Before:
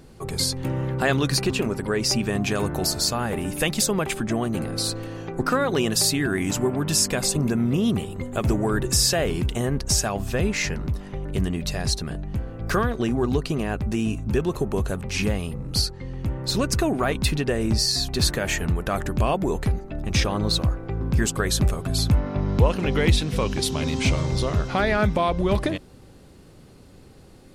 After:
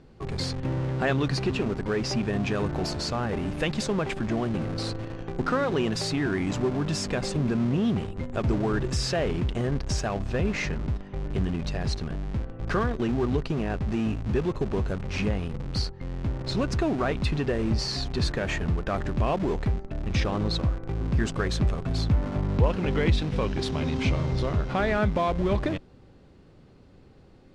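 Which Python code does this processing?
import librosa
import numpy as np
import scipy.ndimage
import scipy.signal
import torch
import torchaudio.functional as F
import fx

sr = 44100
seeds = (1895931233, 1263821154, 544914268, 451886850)

p1 = fx.high_shelf(x, sr, hz=5800.0, db=-6.0)
p2 = fx.schmitt(p1, sr, flips_db=-28.0)
p3 = p1 + (p2 * 10.0 ** (-8.0 / 20.0))
p4 = fx.air_absorb(p3, sr, metres=94.0)
y = p4 * 10.0 ** (-4.5 / 20.0)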